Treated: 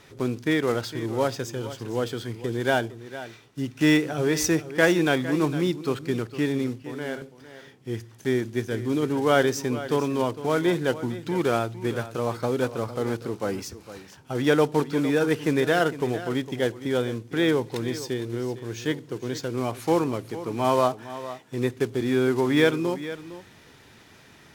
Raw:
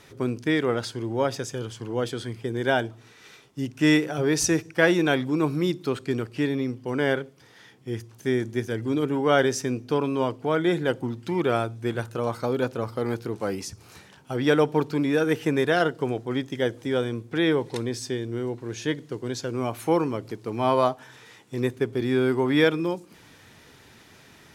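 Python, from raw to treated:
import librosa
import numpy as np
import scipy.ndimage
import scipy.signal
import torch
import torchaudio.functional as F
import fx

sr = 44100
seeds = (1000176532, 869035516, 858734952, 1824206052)

y = fx.block_float(x, sr, bits=5)
y = fx.comb_fb(y, sr, f0_hz=52.0, decay_s=1.7, harmonics='all', damping=0.0, mix_pct=70, at=(6.82, 7.22))
y = y + 10.0 ** (-14.0 / 20.0) * np.pad(y, (int(457 * sr / 1000.0), 0))[:len(y)]
y = np.interp(np.arange(len(y)), np.arange(len(y))[::2], y[::2])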